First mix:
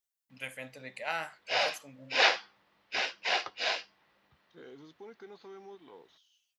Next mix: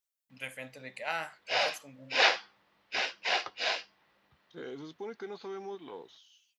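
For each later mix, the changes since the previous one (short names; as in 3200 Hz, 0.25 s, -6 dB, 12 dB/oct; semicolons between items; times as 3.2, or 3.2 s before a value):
second voice +8.0 dB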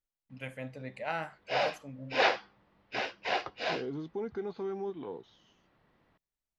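second voice: entry -0.85 s; master: add tilt -3.5 dB/oct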